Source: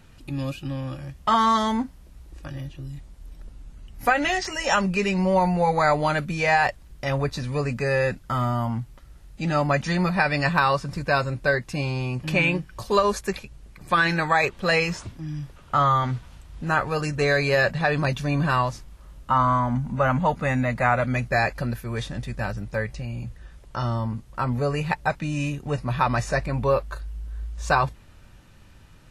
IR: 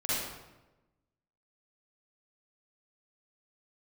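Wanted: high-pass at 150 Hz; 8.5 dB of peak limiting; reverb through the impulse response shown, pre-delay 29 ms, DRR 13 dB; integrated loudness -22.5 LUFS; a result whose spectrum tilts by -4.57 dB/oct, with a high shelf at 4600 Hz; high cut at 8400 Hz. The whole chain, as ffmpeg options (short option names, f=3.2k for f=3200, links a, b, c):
-filter_complex "[0:a]highpass=150,lowpass=8.4k,highshelf=f=4.6k:g=-3.5,alimiter=limit=-14.5dB:level=0:latency=1,asplit=2[a][b];[1:a]atrim=start_sample=2205,adelay=29[c];[b][c]afir=irnorm=-1:irlink=0,volume=-21dB[d];[a][d]amix=inputs=2:normalize=0,volume=4dB"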